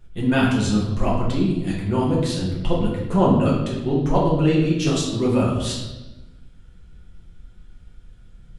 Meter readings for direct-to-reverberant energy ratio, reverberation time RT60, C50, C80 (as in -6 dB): -5.5 dB, 1.0 s, 2.5 dB, 5.0 dB